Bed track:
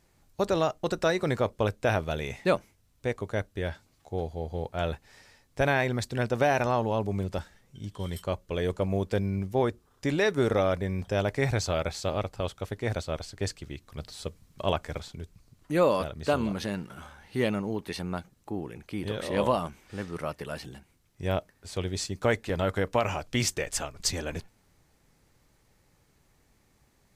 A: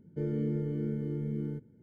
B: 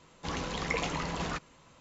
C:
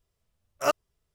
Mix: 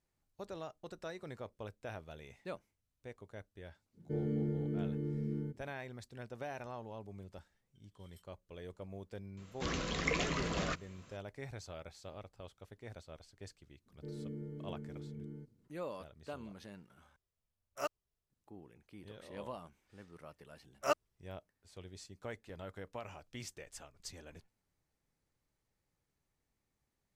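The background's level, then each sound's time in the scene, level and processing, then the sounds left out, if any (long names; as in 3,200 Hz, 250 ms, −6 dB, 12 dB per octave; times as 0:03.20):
bed track −19.5 dB
0:03.93: mix in A −3.5 dB, fades 0.05 s
0:09.37: mix in B −1.5 dB + parametric band 870 Hz −14.5 dB 0.25 octaves
0:13.86: mix in A −12.5 dB
0:17.16: overwrite with C −13.5 dB
0:20.22: mix in C −7.5 dB + high-shelf EQ 11,000 Hz −8.5 dB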